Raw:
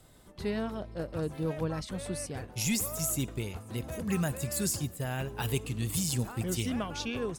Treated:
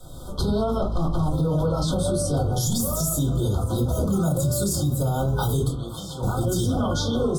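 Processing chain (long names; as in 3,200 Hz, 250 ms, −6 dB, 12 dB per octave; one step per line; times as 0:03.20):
0:00.82–0:01.30: lower of the sound and its delayed copy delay 1 ms
camcorder AGC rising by 20 dB per second
0:05.68–0:06.23: three-way crossover with the lows and the highs turned down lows −19 dB, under 500 Hz, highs −22 dB, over 3,000 Hz
convolution reverb RT60 0.30 s, pre-delay 3 ms, DRR −4 dB
brick-wall band-stop 1,500–3,100 Hz
brickwall limiter −20.5 dBFS, peak gain reduction 11.5 dB
level +5.5 dB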